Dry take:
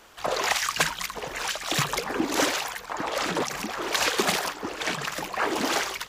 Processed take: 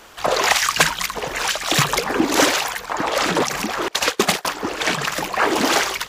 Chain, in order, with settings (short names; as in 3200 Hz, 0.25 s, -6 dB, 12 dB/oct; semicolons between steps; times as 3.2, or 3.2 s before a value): 3.88–4.45 gate -23 dBFS, range -28 dB; gain +8 dB